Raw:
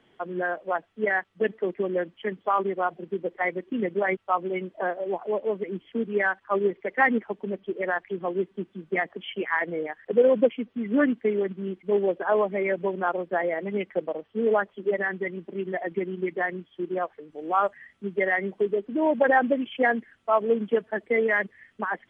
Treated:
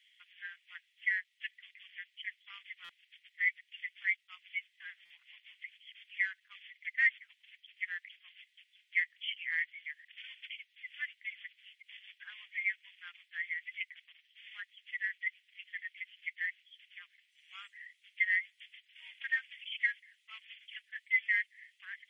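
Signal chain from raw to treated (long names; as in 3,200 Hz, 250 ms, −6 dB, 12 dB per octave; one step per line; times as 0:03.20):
Chebyshev high-pass filter 2,000 Hz, order 5
dynamic equaliser 2,900 Hz, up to −3 dB, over −47 dBFS, Q 1.7
buffer that repeats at 0:02.84/0:05.05, samples 256, times 8
level +2.5 dB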